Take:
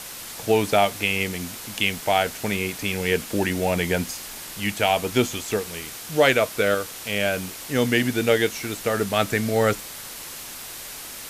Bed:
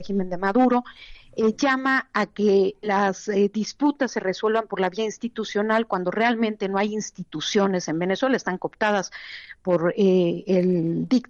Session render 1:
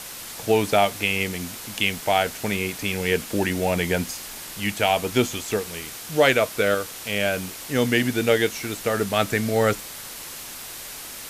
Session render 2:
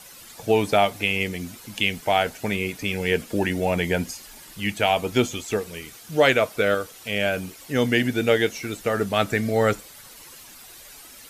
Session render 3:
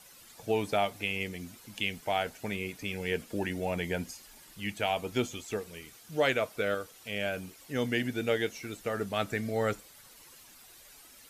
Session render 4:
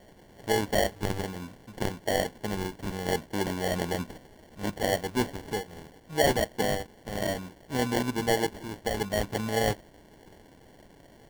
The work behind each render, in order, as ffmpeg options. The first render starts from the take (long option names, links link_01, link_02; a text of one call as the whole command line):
ffmpeg -i in.wav -af anull out.wav
ffmpeg -i in.wav -af "afftdn=noise_reduction=11:noise_floor=-37" out.wav
ffmpeg -i in.wav -af "volume=-9.5dB" out.wav
ffmpeg -i in.wav -filter_complex "[0:a]asplit=2[link_01][link_02];[link_02]aeval=exprs='sgn(val(0))*max(abs(val(0))-0.00251,0)':channel_layout=same,volume=-7dB[link_03];[link_01][link_03]amix=inputs=2:normalize=0,acrusher=samples=35:mix=1:aa=0.000001" out.wav